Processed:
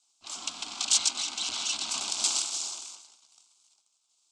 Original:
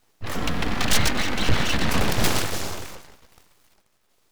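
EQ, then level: elliptic low-pass 7.9 kHz, stop band 60 dB; differentiator; static phaser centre 490 Hz, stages 6; +6.5 dB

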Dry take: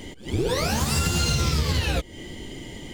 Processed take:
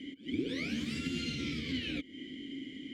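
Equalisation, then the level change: vowel filter i; +3.5 dB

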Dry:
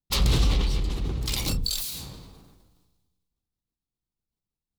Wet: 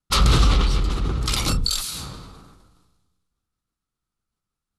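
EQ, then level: steep low-pass 12 kHz 96 dB/octave; peaking EQ 1.3 kHz +13.5 dB 0.4 oct; +5.0 dB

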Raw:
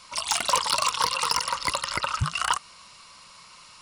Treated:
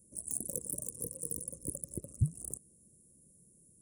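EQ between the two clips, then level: high-pass 89 Hz 6 dB/octave; inverse Chebyshev band-stop 870–4900 Hz, stop band 50 dB; peaking EQ 3.7 kHz -9.5 dB 0.2 oct; 0.0 dB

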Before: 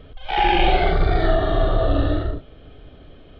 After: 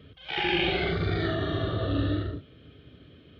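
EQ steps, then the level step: high-pass 82 Hz 24 dB/octave; peaking EQ 770 Hz -14.5 dB 1.1 oct; -2.0 dB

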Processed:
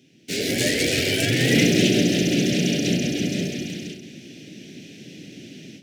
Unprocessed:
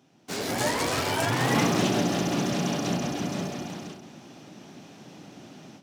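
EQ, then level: Chebyshev band-stop 400–2700 Hz, order 2; peaking EQ 1.8 kHz +8.5 dB 1.3 oct; dynamic bell 610 Hz, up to +4 dB, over -40 dBFS, Q 1.2; +6.0 dB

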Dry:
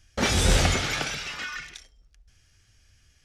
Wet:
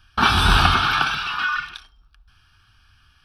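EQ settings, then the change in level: peaking EQ 1.3 kHz +14 dB 2.1 oct; static phaser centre 2 kHz, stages 6; +3.0 dB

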